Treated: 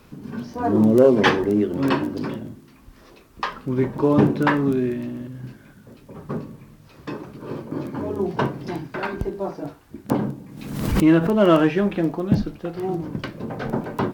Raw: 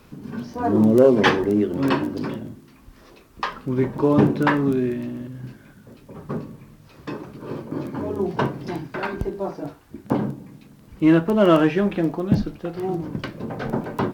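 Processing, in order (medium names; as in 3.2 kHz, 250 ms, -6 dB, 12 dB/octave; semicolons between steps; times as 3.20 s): 10.09–11.31 s: swell ahead of each attack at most 50 dB/s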